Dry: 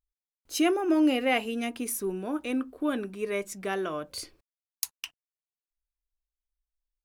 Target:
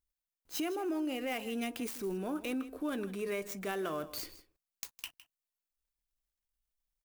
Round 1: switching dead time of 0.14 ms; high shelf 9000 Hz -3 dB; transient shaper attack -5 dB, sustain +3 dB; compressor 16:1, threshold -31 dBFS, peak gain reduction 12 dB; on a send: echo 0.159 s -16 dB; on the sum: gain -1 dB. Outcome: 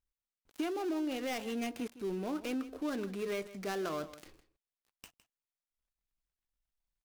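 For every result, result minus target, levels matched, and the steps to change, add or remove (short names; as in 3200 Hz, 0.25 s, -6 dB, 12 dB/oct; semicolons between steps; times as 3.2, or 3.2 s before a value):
8000 Hz band -5.0 dB; switching dead time: distortion +4 dB
change: high shelf 9000 Hz +7.5 dB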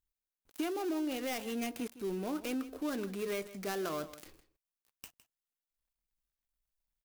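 switching dead time: distortion +4 dB
change: switching dead time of 0.039 ms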